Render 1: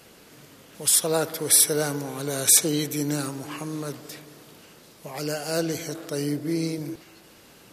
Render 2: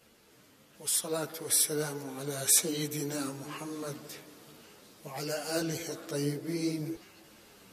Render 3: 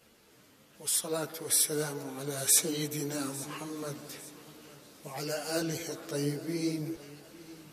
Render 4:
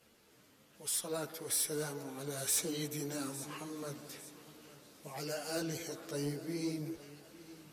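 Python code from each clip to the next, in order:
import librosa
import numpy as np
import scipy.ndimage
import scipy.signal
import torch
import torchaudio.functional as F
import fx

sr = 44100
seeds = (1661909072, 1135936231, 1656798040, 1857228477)

y1 = fx.rider(x, sr, range_db=3, speed_s=2.0)
y1 = fx.ensemble(y1, sr)
y1 = F.gain(torch.from_numpy(y1), -4.5).numpy()
y2 = fx.echo_feedback(y1, sr, ms=852, feedback_pct=40, wet_db=-18.5)
y3 = fx.cheby_harmonics(y2, sr, harmonics=(4, 5, 6, 8), levels_db=(-11, -17, -11, -22), full_scale_db=-10.5)
y3 = 10.0 ** (-16.0 / 20.0) * np.tanh(y3 / 10.0 ** (-16.0 / 20.0))
y3 = F.gain(torch.from_numpy(y3), -9.0).numpy()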